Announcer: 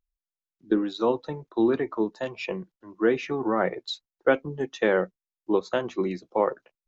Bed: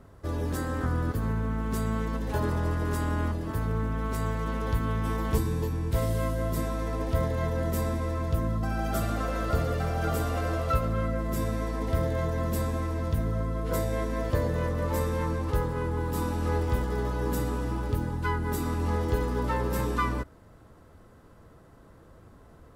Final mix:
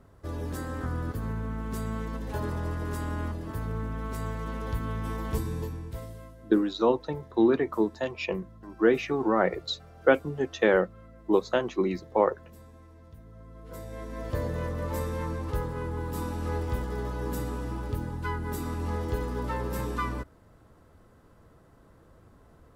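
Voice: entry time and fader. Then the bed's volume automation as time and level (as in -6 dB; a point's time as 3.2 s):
5.80 s, +0.5 dB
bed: 5.63 s -4 dB
6.42 s -22 dB
13.24 s -22 dB
14.41 s -3.5 dB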